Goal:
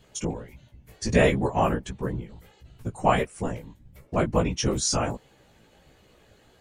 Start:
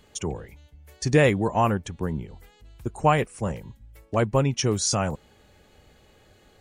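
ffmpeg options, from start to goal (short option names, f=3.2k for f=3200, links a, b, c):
-af "afftfilt=real='hypot(re,im)*cos(2*PI*random(0))':imag='hypot(re,im)*sin(2*PI*random(1))':win_size=512:overlap=0.75,aeval=exprs='0.251*(cos(1*acos(clip(val(0)/0.251,-1,1)))-cos(1*PI/2))+0.00355*(cos(3*acos(clip(val(0)/0.251,-1,1)))-cos(3*PI/2))+0.00251*(cos(5*acos(clip(val(0)/0.251,-1,1)))-cos(5*PI/2))':c=same,flanger=delay=15:depth=3.3:speed=1.5,volume=8dB"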